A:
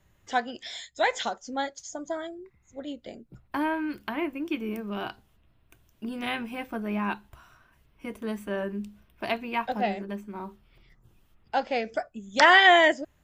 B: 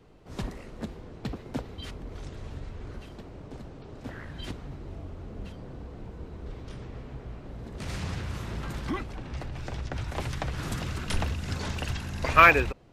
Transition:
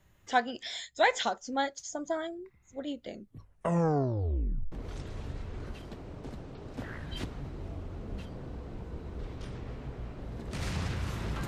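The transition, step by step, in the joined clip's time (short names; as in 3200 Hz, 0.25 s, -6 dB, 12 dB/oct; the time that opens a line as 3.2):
A
3.05 tape stop 1.67 s
4.72 switch to B from 1.99 s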